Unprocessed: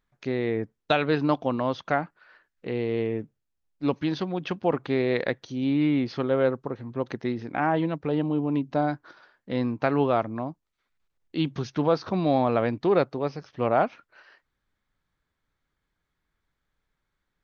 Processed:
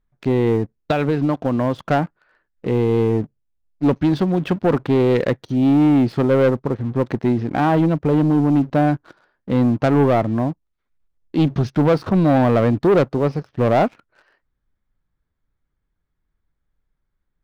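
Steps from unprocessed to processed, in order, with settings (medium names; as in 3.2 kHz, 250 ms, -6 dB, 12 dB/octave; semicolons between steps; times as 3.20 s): tilt EQ -2.5 dB/octave; 0.55–1.85 s: compression 16:1, threshold -21 dBFS, peak gain reduction 7.5 dB; waveshaping leveller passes 2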